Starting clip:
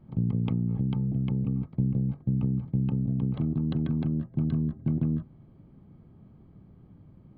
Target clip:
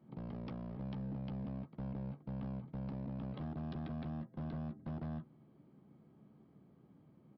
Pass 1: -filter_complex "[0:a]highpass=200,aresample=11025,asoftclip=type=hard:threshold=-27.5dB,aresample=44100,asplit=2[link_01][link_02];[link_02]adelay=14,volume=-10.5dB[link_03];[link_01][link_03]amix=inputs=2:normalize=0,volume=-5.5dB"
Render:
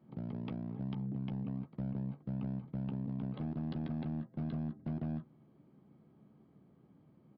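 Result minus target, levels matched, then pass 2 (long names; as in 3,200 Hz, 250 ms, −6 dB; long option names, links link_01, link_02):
hard clipping: distortion −8 dB
-filter_complex "[0:a]highpass=200,aresample=11025,asoftclip=type=hard:threshold=-34dB,aresample=44100,asplit=2[link_01][link_02];[link_02]adelay=14,volume=-10.5dB[link_03];[link_01][link_03]amix=inputs=2:normalize=0,volume=-5.5dB"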